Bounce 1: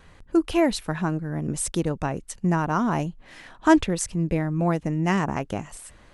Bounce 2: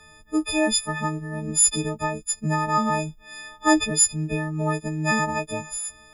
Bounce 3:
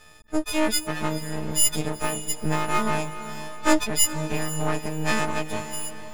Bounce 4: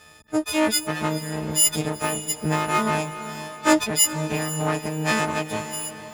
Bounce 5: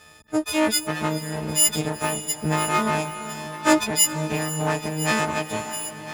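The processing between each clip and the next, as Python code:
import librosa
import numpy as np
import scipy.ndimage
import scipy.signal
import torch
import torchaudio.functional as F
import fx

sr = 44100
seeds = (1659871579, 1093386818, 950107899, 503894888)

y1 = fx.freq_snap(x, sr, grid_st=6)
y1 = y1 * librosa.db_to_amplitude(-2.5)
y2 = np.maximum(y1, 0.0)
y2 = fx.echo_diffused(y2, sr, ms=474, feedback_pct=42, wet_db=-12)
y2 = y2 * librosa.db_to_amplitude(2.0)
y3 = scipy.signal.sosfilt(scipy.signal.butter(2, 67.0, 'highpass', fs=sr, output='sos'), y2)
y3 = y3 * librosa.db_to_amplitude(2.5)
y4 = y3 + 10.0 ** (-14.5 / 20.0) * np.pad(y3, (int(1008 * sr / 1000.0), 0))[:len(y3)]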